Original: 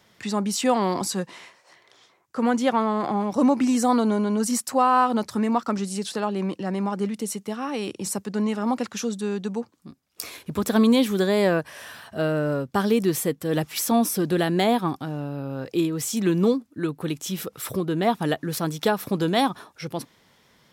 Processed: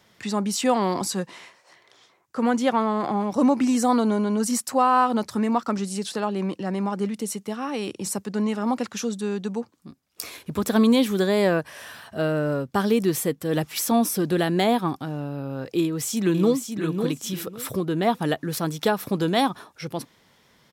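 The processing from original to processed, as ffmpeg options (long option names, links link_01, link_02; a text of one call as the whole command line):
ffmpeg -i in.wav -filter_complex "[0:a]asplit=2[link_01][link_02];[link_02]afade=type=in:start_time=15.79:duration=0.01,afade=type=out:start_time=16.8:duration=0.01,aecho=0:1:550|1100|1650:0.473151|0.0946303|0.0189261[link_03];[link_01][link_03]amix=inputs=2:normalize=0" out.wav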